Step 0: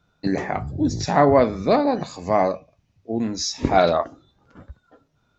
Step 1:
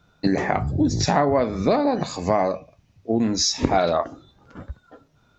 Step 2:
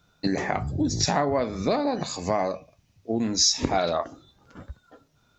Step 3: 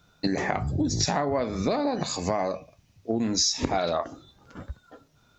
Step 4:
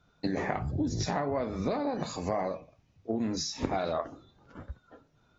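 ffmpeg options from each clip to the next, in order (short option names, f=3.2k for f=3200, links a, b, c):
-af "acompressor=threshold=-22dB:ratio=6,volume=6dB"
-af "highshelf=f=3.6k:g=9,volume=-5dB"
-af "acompressor=threshold=-25dB:ratio=3,volume=2.5dB"
-af "flanger=delay=2.4:depth=7.8:regen=-81:speed=1.3:shape=triangular,highshelf=f=3.1k:g=-9" -ar 32000 -c:a aac -b:a 24k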